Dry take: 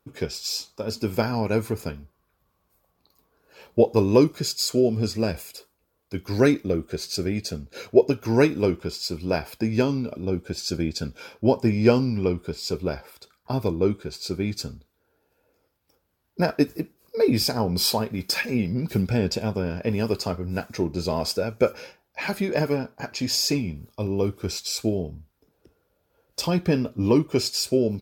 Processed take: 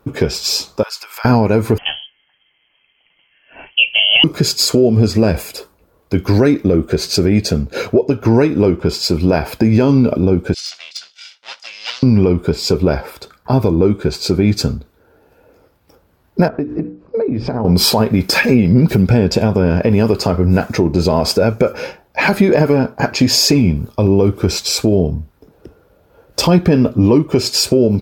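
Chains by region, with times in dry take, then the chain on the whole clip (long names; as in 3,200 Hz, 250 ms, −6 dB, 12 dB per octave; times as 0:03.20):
0:00.83–0:01.25: downward compressor 16 to 1, threshold −28 dBFS + high-pass filter 1,100 Hz 24 dB per octave
0:01.78–0:04.24: voice inversion scrambler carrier 3,200 Hz + flanger 1.4 Hz, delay 5.7 ms, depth 1.8 ms, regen −64%
0:07.96–0:08.86: high-shelf EQ 11,000 Hz −5.5 dB + one half of a high-frequency compander decoder only
0:10.54–0:12.03: lower of the sound and its delayed copy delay 1.4 ms + flat-topped band-pass 4,400 Hz, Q 1.2 + de-essing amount 80%
0:16.48–0:17.65: head-to-tape spacing loss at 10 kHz 40 dB + mains-hum notches 60/120/180/240/300/360/420/480/540 Hz + downward compressor 10 to 1, threshold −33 dBFS
whole clip: high-shelf EQ 2,500 Hz −9.5 dB; downward compressor 12 to 1, threshold −24 dBFS; boost into a limiter +20 dB; level −1 dB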